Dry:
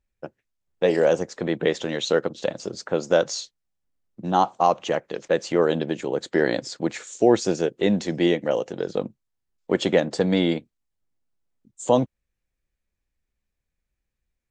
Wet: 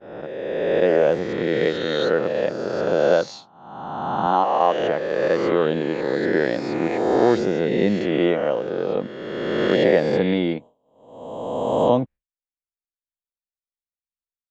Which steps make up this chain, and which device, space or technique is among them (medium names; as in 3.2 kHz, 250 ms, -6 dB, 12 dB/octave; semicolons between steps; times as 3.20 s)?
reverse spectral sustain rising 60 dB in 2.02 s; 4.26–4.80 s: high-pass 210 Hz 12 dB/octave; hearing-loss simulation (low-pass 2.7 kHz 12 dB/octave; expander -32 dBFS); trim -1.5 dB